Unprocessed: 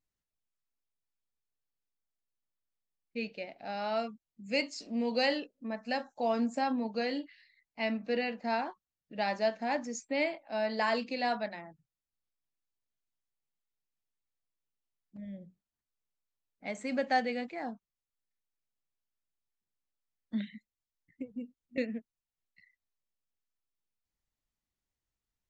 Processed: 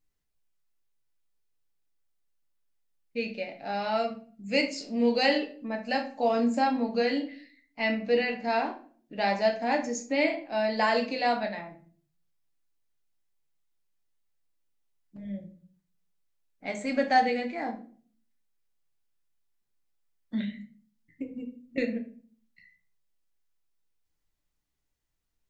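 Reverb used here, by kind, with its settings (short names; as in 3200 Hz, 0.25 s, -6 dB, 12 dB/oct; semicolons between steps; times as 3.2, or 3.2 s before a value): shoebox room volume 40 m³, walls mixed, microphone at 0.41 m; gain +3.5 dB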